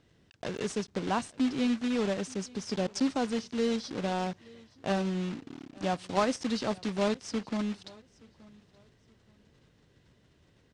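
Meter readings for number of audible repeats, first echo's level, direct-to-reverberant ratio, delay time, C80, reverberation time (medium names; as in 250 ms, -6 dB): 1, -24.0 dB, no reverb, 875 ms, no reverb, no reverb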